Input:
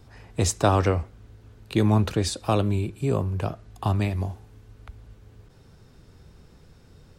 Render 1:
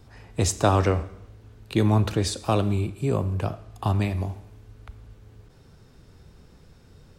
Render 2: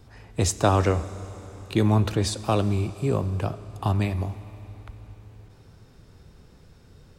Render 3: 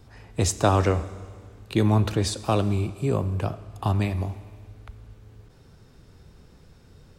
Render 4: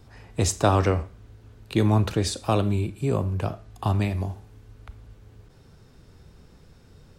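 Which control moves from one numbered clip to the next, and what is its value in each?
Schroeder reverb, RT60: 0.87, 4.1, 1.9, 0.36 s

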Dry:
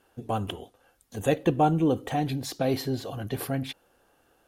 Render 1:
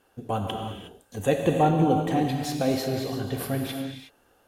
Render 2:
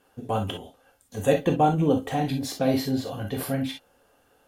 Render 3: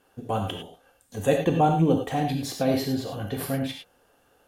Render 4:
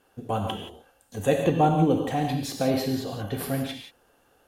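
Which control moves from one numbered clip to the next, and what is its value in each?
non-linear reverb, gate: 390, 80, 130, 200 ms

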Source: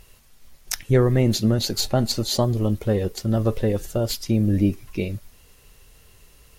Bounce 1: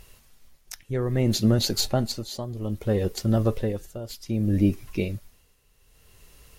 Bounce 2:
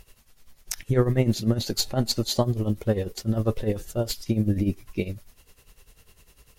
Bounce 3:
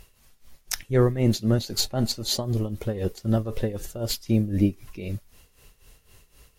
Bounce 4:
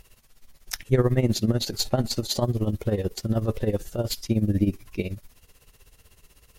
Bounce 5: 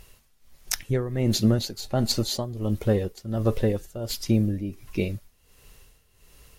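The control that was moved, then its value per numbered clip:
tremolo, rate: 0.62, 10, 3.9, 16, 1.4 Hz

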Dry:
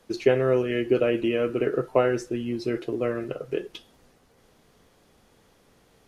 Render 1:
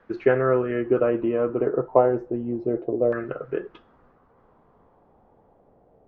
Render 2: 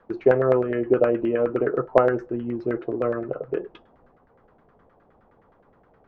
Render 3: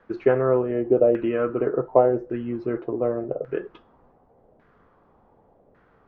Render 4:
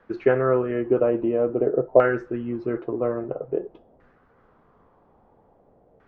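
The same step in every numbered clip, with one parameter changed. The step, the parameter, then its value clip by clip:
LFO low-pass, rate: 0.32, 9.6, 0.87, 0.5 Hz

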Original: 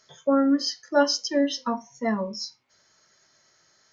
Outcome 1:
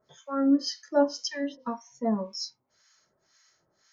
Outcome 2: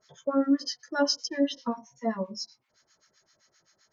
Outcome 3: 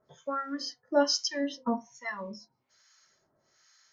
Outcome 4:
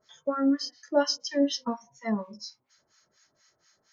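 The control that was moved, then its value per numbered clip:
harmonic tremolo, rate: 1.9, 7.7, 1.2, 4.2 Hz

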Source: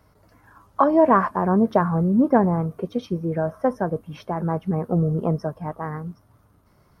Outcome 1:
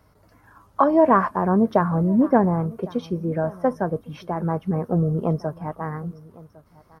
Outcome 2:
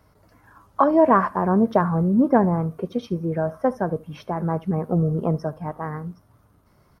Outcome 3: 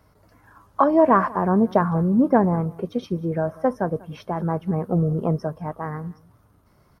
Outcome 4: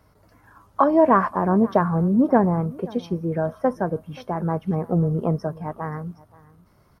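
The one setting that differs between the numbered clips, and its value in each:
echo, time: 1106, 74, 192, 529 ms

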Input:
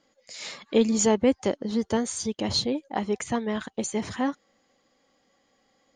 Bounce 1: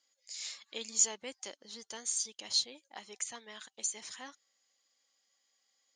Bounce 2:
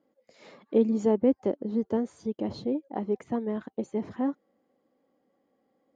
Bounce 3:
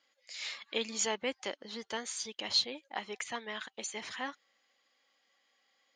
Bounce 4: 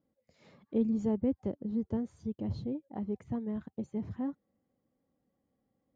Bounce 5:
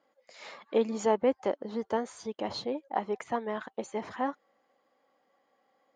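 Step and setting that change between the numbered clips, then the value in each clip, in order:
band-pass, frequency: 7400, 330, 2800, 100, 840 Hz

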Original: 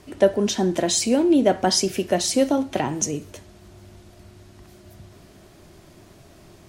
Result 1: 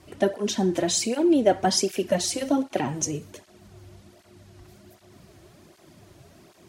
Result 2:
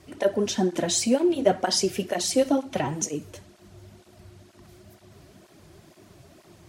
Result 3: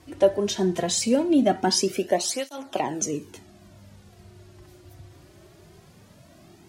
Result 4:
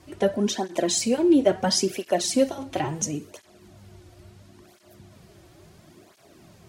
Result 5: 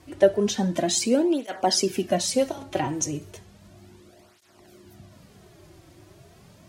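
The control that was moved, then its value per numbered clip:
tape flanging out of phase, nulls at: 1.3, 2.1, 0.2, 0.73, 0.34 Hz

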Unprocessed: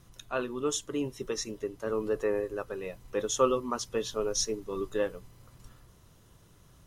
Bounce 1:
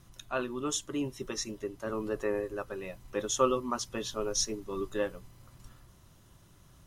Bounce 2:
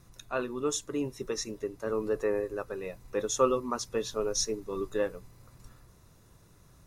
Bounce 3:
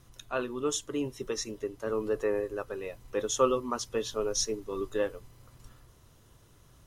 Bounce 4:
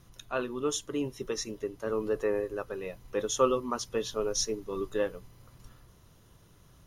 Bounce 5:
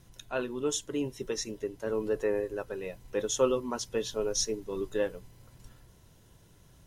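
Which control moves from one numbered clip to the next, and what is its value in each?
notch, frequency: 460, 3100, 180, 7900, 1200 Hz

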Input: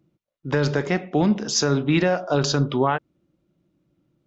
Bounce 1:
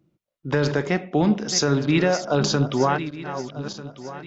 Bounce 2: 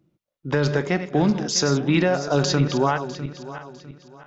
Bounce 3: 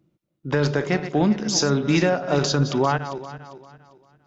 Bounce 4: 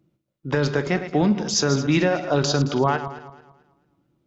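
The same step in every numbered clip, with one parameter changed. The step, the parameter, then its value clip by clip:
regenerating reverse delay, time: 0.622, 0.326, 0.199, 0.11 s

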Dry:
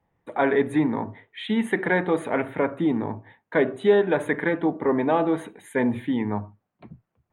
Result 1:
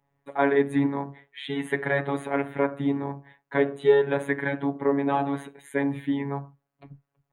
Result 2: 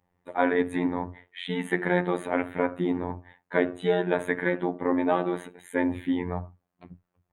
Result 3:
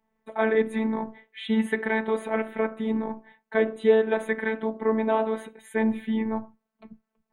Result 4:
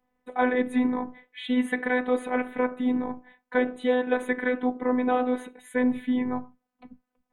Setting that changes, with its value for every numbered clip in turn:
robotiser, frequency: 140, 89, 220, 250 Hz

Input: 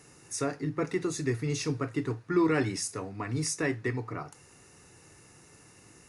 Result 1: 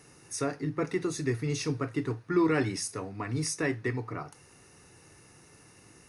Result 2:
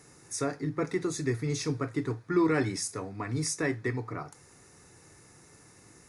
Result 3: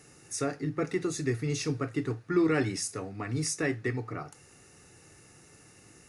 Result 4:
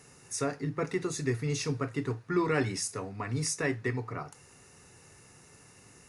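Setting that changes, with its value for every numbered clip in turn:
notch, frequency: 7300, 2800, 990, 320 Hz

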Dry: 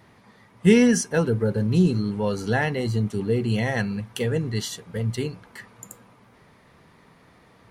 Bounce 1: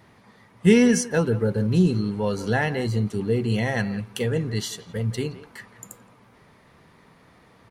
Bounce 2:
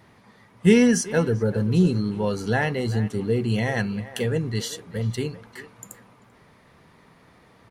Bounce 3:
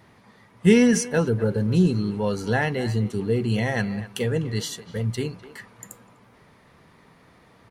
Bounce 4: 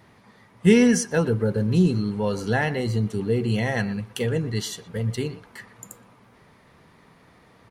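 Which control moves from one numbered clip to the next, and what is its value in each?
speakerphone echo, time: 0.17, 0.39, 0.25, 0.12 s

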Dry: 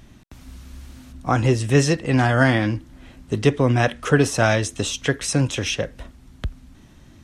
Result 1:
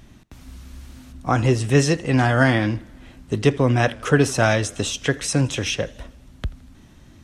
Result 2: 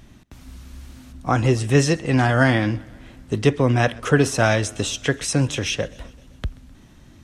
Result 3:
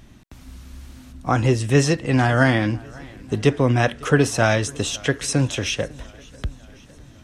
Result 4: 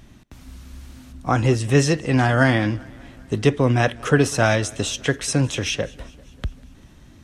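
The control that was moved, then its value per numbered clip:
warbling echo, time: 81, 129, 550, 197 ms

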